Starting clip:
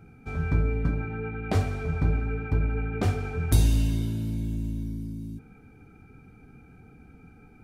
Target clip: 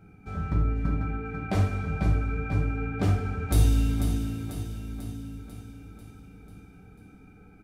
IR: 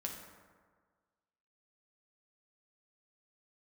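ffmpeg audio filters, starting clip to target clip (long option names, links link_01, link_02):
-filter_complex "[0:a]aecho=1:1:493|986|1479|1972|2465|2958|3451:0.398|0.227|0.129|0.0737|0.042|0.024|0.0137[link_01];[1:a]atrim=start_sample=2205,atrim=end_sample=3969[link_02];[link_01][link_02]afir=irnorm=-1:irlink=0"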